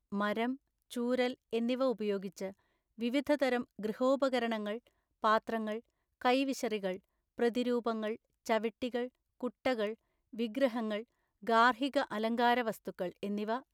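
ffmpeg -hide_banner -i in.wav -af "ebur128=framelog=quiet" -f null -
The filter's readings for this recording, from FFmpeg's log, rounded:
Integrated loudness:
  I:         -33.9 LUFS
  Threshold: -44.3 LUFS
Loudness range:
  LRA:         3.6 LU
  Threshold: -54.4 LUFS
  LRA low:   -36.2 LUFS
  LRA high:  -32.6 LUFS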